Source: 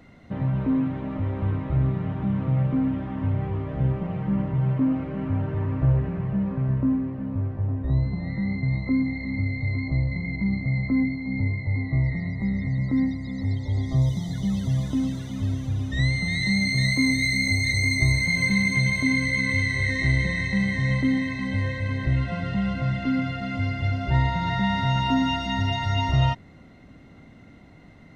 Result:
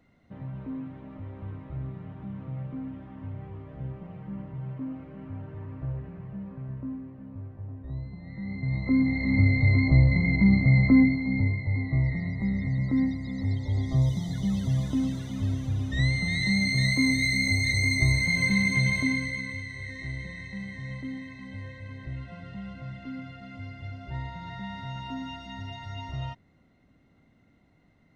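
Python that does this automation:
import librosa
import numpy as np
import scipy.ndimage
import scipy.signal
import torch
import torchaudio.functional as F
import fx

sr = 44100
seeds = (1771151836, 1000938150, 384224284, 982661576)

y = fx.gain(x, sr, db=fx.line((8.23, -13.0), (8.87, -1.0), (9.39, 5.5), (10.9, 5.5), (11.63, -2.0), (18.98, -2.0), (19.63, -14.0)))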